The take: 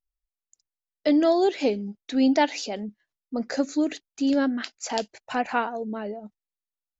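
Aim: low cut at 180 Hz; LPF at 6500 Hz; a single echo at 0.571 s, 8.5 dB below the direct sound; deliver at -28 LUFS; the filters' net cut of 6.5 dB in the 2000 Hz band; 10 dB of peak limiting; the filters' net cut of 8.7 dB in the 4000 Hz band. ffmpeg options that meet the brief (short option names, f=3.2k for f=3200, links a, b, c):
-af "highpass=180,lowpass=6.5k,equalizer=f=2k:t=o:g=-7,equalizer=f=4k:t=o:g=-8.5,alimiter=limit=-21dB:level=0:latency=1,aecho=1:1:571:0.376,volume=3.5dB"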